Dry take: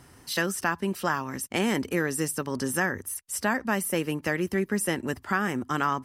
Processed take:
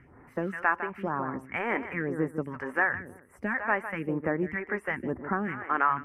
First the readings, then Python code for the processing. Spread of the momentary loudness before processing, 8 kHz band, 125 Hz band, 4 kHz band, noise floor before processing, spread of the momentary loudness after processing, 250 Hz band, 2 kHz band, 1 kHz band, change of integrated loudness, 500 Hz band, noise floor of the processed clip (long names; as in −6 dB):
4 LU, below −30 dB, −4.5 dB, below −15 dB, −54 dBFS, 7 LU, −4.5 dB, 0.0 dB, +0.5 dB, −2.5 dB, −3.0 dB, −57 dBFS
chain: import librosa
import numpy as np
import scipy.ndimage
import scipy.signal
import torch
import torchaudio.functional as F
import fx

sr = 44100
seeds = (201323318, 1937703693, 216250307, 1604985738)

p1 = fx.dynamic_eq(x, sr, hz=2200.0, q=0.79, threshold_db=-41.0, ratio=4.0, max_db=-5)
p2 = fx.echo_feedback(p1, sr, ms=155, feedback_pct=18, wet_db=-11.0)
p3 = 10.0 ** (-19.0 / 20.0) * np.tanh(p2 / 10.0 ** (-19.0 / 20.0))
p4 = p2 + F.gain(torch.from_numpy(p3), -6.0).numpy()
p5 = fx.phaser_stages(p4, sr, stages=2, low_hz=130.0, high_hz=3700.0, hz=1.0, feedback_pct=25)
p6 = fx.curve_eq(p5, sr, hz=(130.0, 2200.0, 4000.0), db=(0, 10, -29))
y = F.gain(torch.from_numpy(p6), -6.5).numpy()